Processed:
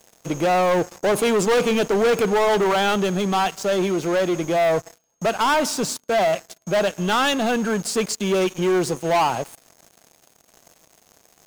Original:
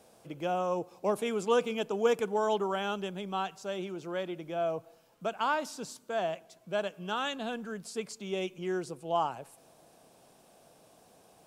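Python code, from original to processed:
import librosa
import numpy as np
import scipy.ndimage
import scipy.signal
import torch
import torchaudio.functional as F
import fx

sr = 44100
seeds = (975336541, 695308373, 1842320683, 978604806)

y = x + 10.0 ** (-60.0 / 20.0) * np.sin(2.0 * np.pi * 6500.0 * np.arange(len(x)) / sr)
y = fx.leveller(y, sr, passes=5)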